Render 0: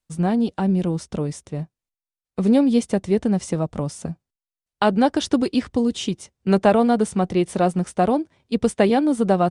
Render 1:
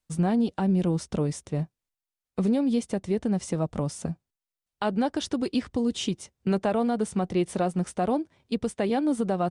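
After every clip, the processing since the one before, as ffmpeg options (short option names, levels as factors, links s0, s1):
-af "alimiter=limit=0.15:level=0:latency=1:release=439"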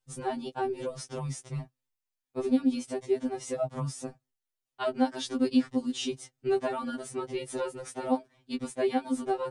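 -af "afftfilt=real='re*2.45*eq(mod(b,6),0)':imag='im*2.45*eq(mod(b,6),0)':win_size=2048:overlap=0.75"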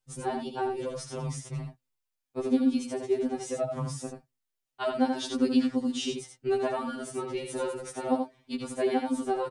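-af "aecho=1:1:81:0.531"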